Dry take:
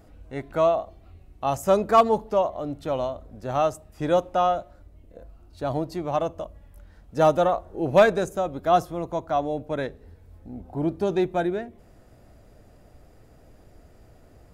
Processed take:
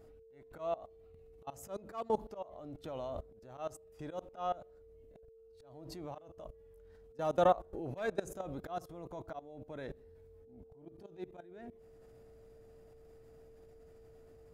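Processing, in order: level quantiser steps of 22 dB; auto swell 0.693 s; whine 450 Hz -61 dBFS; gain +4 dB

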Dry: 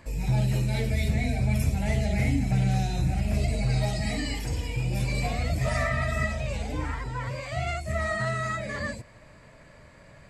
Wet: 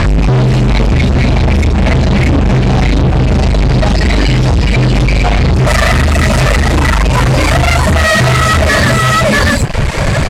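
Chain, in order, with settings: low shelf 160 Hz +9.5 dB; echo 0.636 s -5 dB; compressor 3:1, threshold -39 dBFS, peak gain reduction 20.5 dB; reverb removal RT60 1.5 s; fuzz box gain 52 dB, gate -58 dBFS; LPF 5000 Hz 12 dB/oct, from 5.67 s 11000 Hz; gain +6 dB

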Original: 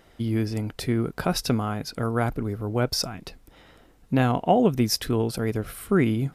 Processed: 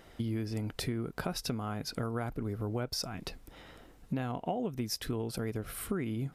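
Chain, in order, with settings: compressor 6:1, threshold -32 dBFS, peak gain reduction 16.5 dB

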